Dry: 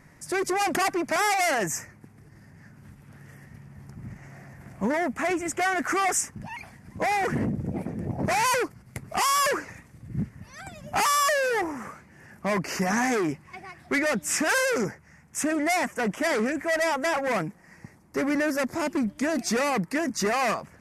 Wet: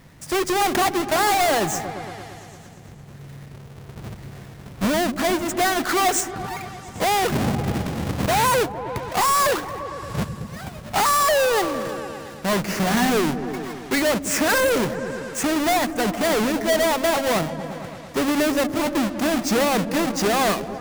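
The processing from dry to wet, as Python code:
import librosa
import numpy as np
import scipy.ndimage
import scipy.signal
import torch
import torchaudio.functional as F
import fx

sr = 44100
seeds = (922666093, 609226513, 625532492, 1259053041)

y = fx.halfwave_hold(x, sr)
y = fx.echo_opening(y, sr, ms=114, hz=200, octaves=1, feedback_pct=70, wet_db=-6)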